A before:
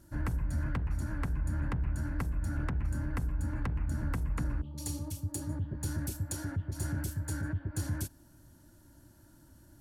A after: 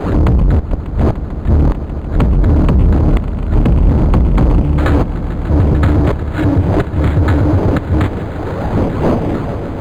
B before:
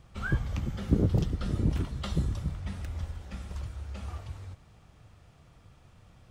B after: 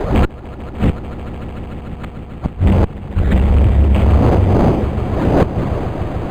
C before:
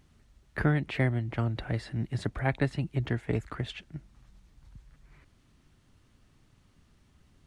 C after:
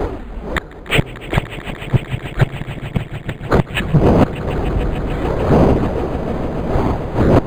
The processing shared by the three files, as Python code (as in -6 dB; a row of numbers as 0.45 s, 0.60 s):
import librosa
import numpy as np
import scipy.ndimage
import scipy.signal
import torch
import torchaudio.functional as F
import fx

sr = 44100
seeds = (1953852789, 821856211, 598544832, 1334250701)

p1 = fx.dmg_wind(x, sr, seeds[0], corner_hz=500.0, level_db=-42.0)
p2 = fx.env_lowpass_down(p1, sr, base_hz=2400.0, full_db=-18.5)
p3 = fx.over_compress(p2, sr, threshold_db=-29.0, ratio=-1.0)
p4 = p2 + F.gain(torch.from_numpy(p3), 1.0).numpy()
p5 = fx.gate_flip(p4, sr, shuts_db=-17.0, range_db=-40)
p6 = fx.env_flanger(p5, sr, rest_ms=8.4, full_db=-30.5)
p7 = fx.tube_stage(p6, sr, drive_db=33.0, bias=0.4)
p8 = p7 + fx.echo_swell(p7, sr, ms=148, loudest=5, wet_db=-16, dry=0)
p9 = np.interp(np.arange(len(p8)), np.arange(len(p8))[::8], p8[::8])
y = p9 * 10.0 ** (-2 / 20.0) / np.max(np.abs(p9))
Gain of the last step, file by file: +25.0 dB, +25.5 dB, +27.5 dB